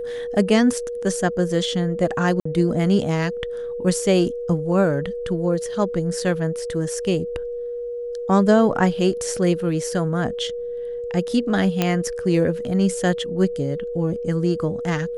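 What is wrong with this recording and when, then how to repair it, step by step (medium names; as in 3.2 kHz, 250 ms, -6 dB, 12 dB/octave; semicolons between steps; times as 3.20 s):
whine 480 Hz -26 dBFS
2.40–2.45 s: dropout 54 ms
11.82 s: pop -5 dBFS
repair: de-click; band-stop 480 Hz, Q 30; interpolate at 2.40 s, 54 ms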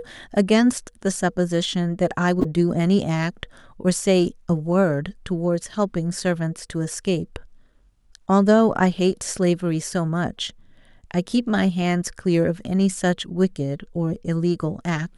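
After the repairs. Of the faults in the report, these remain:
nothing left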